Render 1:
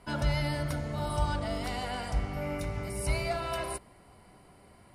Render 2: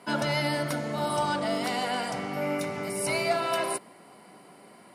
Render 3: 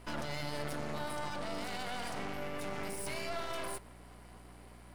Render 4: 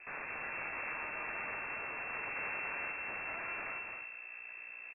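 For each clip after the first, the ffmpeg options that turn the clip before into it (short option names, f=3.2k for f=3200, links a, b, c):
-af "highpass=f=180:w=0.5412,highpass=f=180:w=1.3066,volume=6.5dB"
-filter_complex "[0:a]acrossover=split=110[a][b];[b]alimiter=level_in=2dB:limit=-24dB:level=0:latency=1:release=19,volume=-2dB[c];[a][c]amix=inputs=2:normalize=0,aeval=exprs='max(val(0),0)':c=same,aeval=exprs='val(0)+0.00224*(sin(2*PI*60*n/s)+sin(2*PI*2*60*n/s)/2+sin(2*PI*3*60*n/s)/3+sin(2*PI*4*60*n/s)/4+sin(2*PI*5*60*n/s)/5)':c=same,volume=-1.5dB"
-filter_complex "[0:a]aeval=exprs='(mod(44.7*val(0)+1,2)-1)/44.7':c=same,asplit=2[a][b];[b]aecho=0:1:218|265|384:0.335|0.473|0.119[c];[a][c]amix=inputs=2:normalize=0,lowpass=f=2.3k:t=q:w=0.5098,lowpass=f=2.3k:t=q:w=0.6013,lowpass=f=2.3k:t=q:w=0.9,lowpass=f=2.3k:t=q:w=2.563,afreqshift=-2700,volume=1dB"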